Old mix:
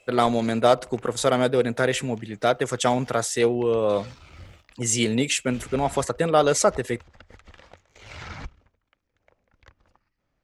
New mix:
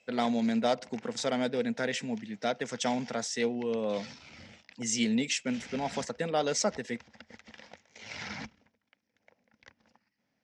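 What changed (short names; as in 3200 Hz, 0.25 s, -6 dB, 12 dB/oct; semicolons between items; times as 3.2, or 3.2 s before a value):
speech -7.5 dB; master: add speaker cabinet 190–7200 Hz, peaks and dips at 220 Hz +9 dB, 360 Hz -8 dB, 590 Hz -3 dB, 1200 Hz -10 dB, 2000 Hz +3 dB, 5400 Hz +7 dB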